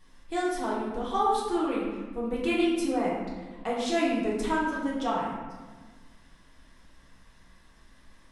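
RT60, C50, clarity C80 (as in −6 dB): 1.4 s, 0.0 dB, 3.0 dB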